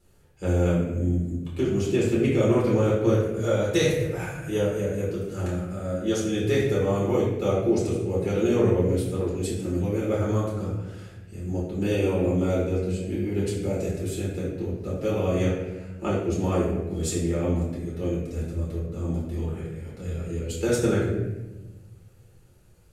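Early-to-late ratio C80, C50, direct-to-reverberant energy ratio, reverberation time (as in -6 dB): 4.5 dB, 1.5 dB, -7.0 dB, 1.1 s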